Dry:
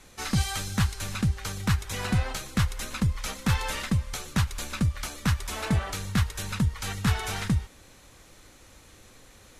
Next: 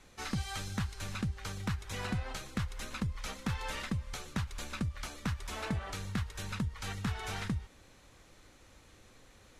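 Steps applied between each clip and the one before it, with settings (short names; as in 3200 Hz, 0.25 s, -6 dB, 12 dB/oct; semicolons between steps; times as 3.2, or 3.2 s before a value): compressor, threshold -25 dBFS, peak gain reduction 6.5 dB; high shelf 7800 Hz -9 dB; gain -5.5 dB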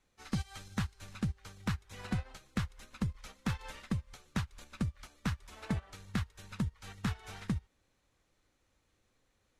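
upward expander 2.5:1, over -43 dBFS; gain +3 dB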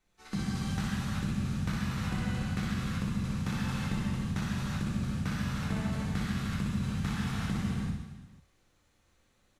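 reverse bouncing-ball echo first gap 60 ms, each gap 1.25×, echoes 5; non-linear reverb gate 0.41 s flat, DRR -6 dB; gain -3.5 dB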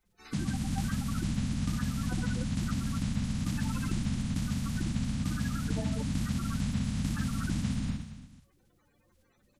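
bin magnitudes rounded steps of 30 dB; gain +1.5 dB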